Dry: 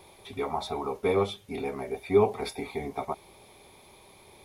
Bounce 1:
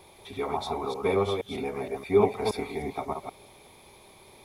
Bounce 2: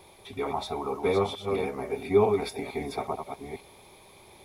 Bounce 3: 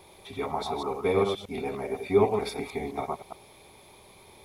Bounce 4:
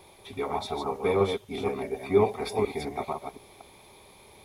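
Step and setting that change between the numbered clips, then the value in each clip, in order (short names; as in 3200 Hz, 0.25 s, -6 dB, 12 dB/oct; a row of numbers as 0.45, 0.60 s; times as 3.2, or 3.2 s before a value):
reverse delay, time: 0.157, 0.451, 0.104, 0.241 s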